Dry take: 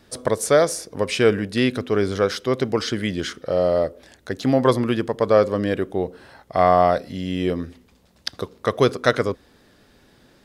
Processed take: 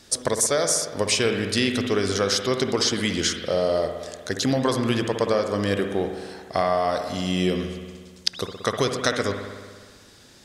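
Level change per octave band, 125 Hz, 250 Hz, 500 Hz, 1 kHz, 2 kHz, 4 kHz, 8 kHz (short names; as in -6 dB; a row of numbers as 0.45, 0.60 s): -2.5, -2.0, -4.0, -5.0, -0.5, +5.0, +8.0 dB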